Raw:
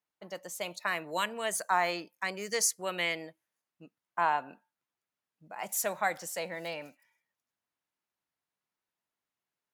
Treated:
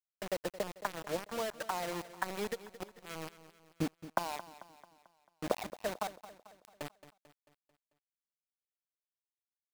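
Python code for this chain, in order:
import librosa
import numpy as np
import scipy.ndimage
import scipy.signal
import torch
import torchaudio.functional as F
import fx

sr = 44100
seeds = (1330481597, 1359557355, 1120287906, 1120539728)

y = fx.recorder_agc(x, sr, target_db=-20.0, rise_db_per_s=33.0, max_gain_db=30)
y = fx.highpass(y, sr, hz=390.0, slope=12, at=(4.29, 5.55))
y = fx.dereverb_blind(y, sr, rt60_s=0.55)
y = scipy.signal.sosfilt(scipy.signal.butter(2, 2900.0, 'lowpass', fs=sr, output='sos'), y)
y = fx.env_lowpass_down(y, sr, base_hz=530.0, full_db=-27.5)
y = fx.level_steps(y, sr, step_db=23, at=(6.07, 6.81))
y = fx.quant_dither(y, sr, seeds[0], bits=6, dither='none')
y = fx.gate_flip(y, sr, shuts_db=-30.0, range_db=-29, at=(2.54, 3.05), fade=0.02)
y = fx.echo_feedback(y, sr, ms=221, feedback_pct=50, wet_db=-15)
y = y * librosa.db_to_amplitude(-2.5)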